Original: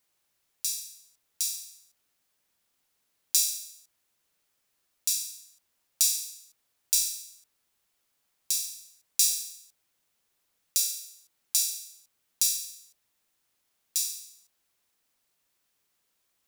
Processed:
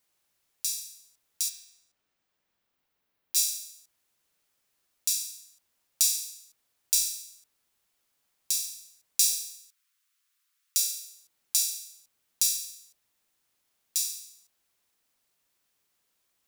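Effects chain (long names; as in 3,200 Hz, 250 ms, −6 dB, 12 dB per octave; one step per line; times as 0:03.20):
0:01.48–0:03.35: parametric band 16,000 Hz → 7,700 Hz −14 dB 1.7 octaves
0:09.22–0:10.79: Butterworth high-pass 1,100 Hz 48 dB per octave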